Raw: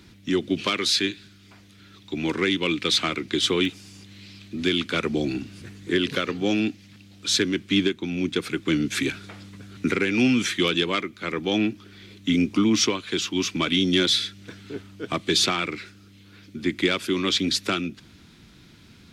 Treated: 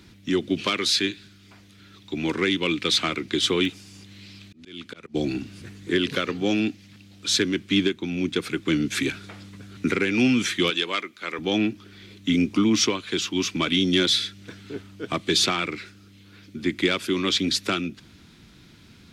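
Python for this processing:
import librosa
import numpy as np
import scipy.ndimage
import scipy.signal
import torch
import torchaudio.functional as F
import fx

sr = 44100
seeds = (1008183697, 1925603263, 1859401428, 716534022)

y = fx.auto_swell(x, sr, attack_ms=613.0, at=(3.83, 5.14), fade=0.02)
y = fx.highpass(y, sr, hz=670.0, slope=6, at=(10.7, 11.39))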